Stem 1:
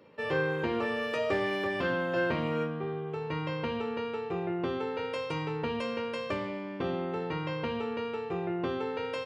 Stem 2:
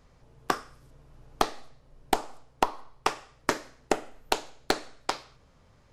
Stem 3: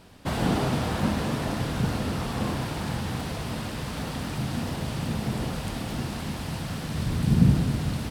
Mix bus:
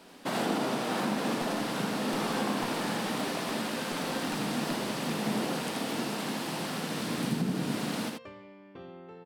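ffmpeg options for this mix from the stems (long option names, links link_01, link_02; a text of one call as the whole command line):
ffmpeg -i stem1.wav -i stem2.wav -i stem3.wav -filter_complex "[0:a]adelay=1950,volume=-14dB[link_01];[1:a]volume=-18.5dB[link_02];[2:a]highpass=frequency=210:width=0.5412,highpass=frequency=210:width=1.3066,alimiter=limit=-21.5dB:level=0:latency=1:release=333,volume=0.5dB,asplit=2[link_03][link_04];[link_04]volume=-4dB,aecho=0:1:82:1[link_05];[link_01][link_02][link_03][link_05]amix=inputs=4:normalize=0" out.wav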